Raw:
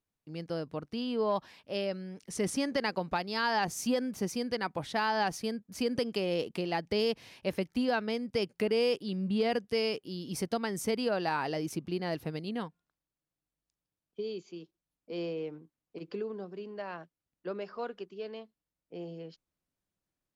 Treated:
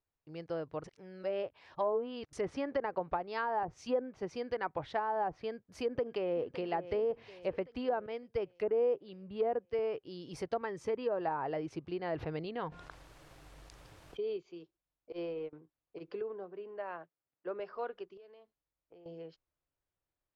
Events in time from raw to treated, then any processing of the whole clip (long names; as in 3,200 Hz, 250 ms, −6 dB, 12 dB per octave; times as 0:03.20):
0:00.84–0:02.33: reverse
0:03.63–0:04.31: multiband upward and downward expander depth 70%
0:05.50–0:06.54: delay throw 560 ms, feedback 55%, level −14 dB
0:08.06–0:09.79: multiband upward and downward expander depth 100%
0:10.61–0:11.21: notch comb filter 720 Hz
0:12.12–0:14.37: envelope flattener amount 70%
0:15.12–0:15.53: noise gate −37 dBFS, range −21 dB
0:16.21–0:17.60: band-pass filter 150–2,700 Hz
0:18.17–0:19.06: downward compressor, threshold −52 dBFS
whole clip: low-pass filter 1,600 Hz 6 dB per octave; parametric band 210 Hz −14.5 dB 0.88 octaves; treble cut that deepens with the level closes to 910 Hz, closed at −29 dBFS; level +1 dB